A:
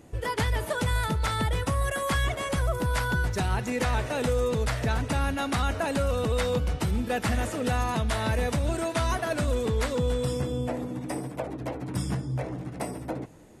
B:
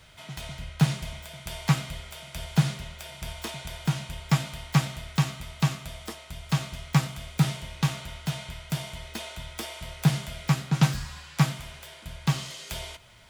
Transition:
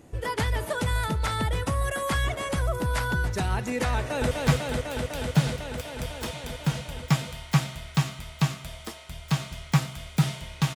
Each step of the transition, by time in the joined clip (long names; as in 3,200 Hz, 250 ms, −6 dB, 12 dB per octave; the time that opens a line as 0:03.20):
A
0:03.96–0:04.31: delay throw 250 ms, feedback 85%, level −2 dB
0:04.31: continue with B from 0:01.52